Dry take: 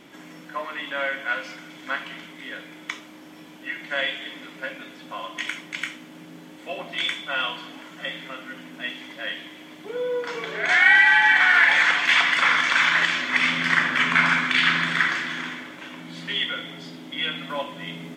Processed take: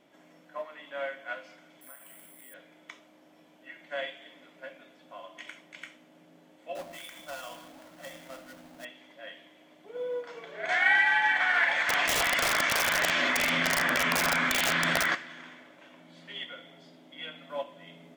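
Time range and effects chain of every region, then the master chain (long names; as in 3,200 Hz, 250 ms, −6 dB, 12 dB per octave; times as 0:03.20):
0:01.81–0:02.54: high-shelf EQ 5,300 Hz −5.5 dB + downward compressor 4 to 1, threshold −37 dBFS + bad sample-rate conversion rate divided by 4×, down none, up zero stuff
0:06.75–0:08.85: each half-wave held at its own peak + notch filter 420 Hz, Q 6.5 + downward compressor, threshold −26 dBFS
0:11.89–0:15.15: wrap-around overflow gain 12 dB + envelope flattener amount 100%
whole clip: parametric band 630 Hz +10.5 dB 0.67 octaves; expander for the loud parts 1.5 to 1, over −29 dBFS; level −8 dB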